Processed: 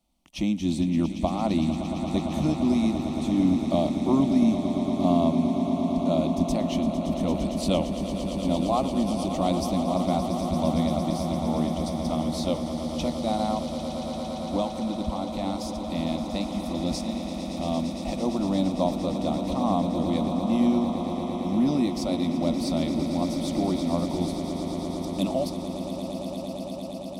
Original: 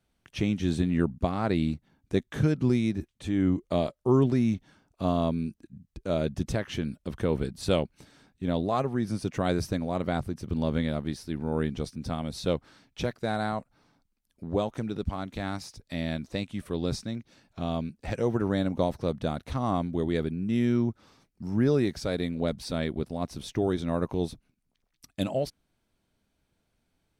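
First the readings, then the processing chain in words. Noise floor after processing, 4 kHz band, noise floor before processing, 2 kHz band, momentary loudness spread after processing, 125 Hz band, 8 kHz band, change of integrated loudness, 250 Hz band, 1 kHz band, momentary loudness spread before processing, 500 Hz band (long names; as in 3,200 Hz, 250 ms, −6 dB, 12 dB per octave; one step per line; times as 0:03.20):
−34 dBFS, +4.5 dB, −76 dBFS, −4.0 dB, 8 LU, −0.5 dB, +6.5 dB, +3.5 dB, +5.5 dB, +5.5 dB, 10 LU, +2.0 dB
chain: phaser with its sweep stopped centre 430 Hz, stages 6
echo that builds up and dies away 114 ms, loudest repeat 8, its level −12 dB
level +4 dB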